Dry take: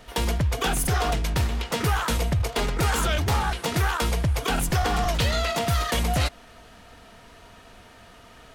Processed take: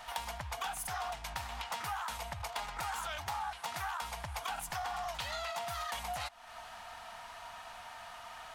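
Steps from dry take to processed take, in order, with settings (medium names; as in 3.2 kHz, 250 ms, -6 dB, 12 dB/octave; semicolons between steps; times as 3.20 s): resonant low shelf 570 Hz -12.5 dB, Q 3; compression 4:1, threshold -39 dBFS, peak gain reduction 17 dB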